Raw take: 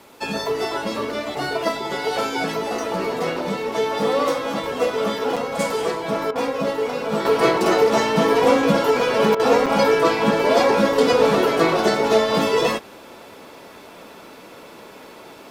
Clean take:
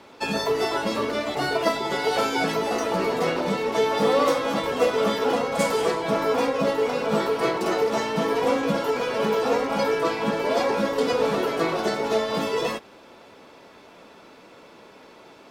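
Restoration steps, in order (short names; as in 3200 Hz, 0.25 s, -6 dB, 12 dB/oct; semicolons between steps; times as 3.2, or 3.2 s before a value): interpolate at 5.36/9.66, 5.7 ms; interpolate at 6.31/9.35, 44 ms; expander -34 dBFS, range -21 dB; gain 0 dB, from 7.25 s -6.5 dB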